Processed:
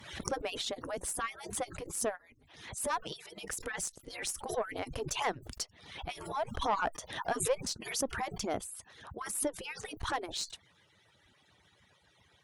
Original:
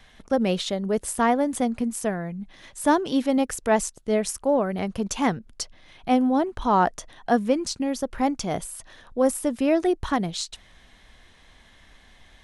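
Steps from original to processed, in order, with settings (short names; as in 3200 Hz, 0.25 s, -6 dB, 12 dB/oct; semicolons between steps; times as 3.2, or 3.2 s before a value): median-filter separation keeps percussive; tube stage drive 16 dB, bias 0.35; backwards sustainer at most 71 dB/s; gain -5 dB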